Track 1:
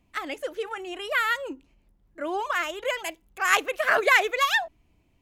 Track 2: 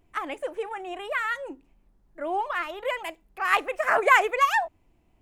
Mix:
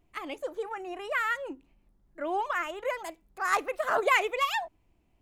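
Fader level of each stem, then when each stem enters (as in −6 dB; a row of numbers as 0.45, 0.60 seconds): −10.0, −5.5 decibels; 0.00, 0.00 seconds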